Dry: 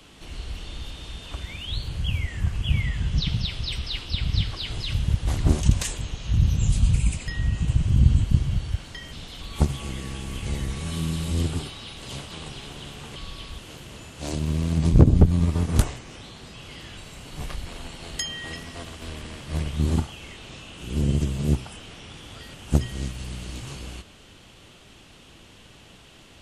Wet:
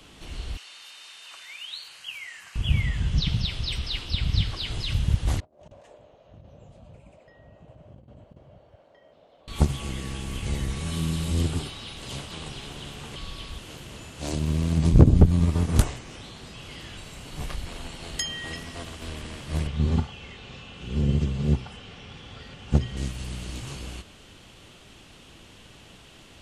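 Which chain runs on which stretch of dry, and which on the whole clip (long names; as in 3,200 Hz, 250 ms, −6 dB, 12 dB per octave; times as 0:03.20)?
0:00.57–0:02.56: high-pass filter 1,300 Hz + notch filter 3,400 Hz, Q 7.4
0:05.40–0:09.48: resonant band-pass 600 Hz, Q 5.5 + compressor whose output falls as the input rises −48 dBFS, ratio −0.5
0:19.67–0:22.97: low-pass filter 4,900 Hz + notch comb filter 320 Hz
whole clip: no processing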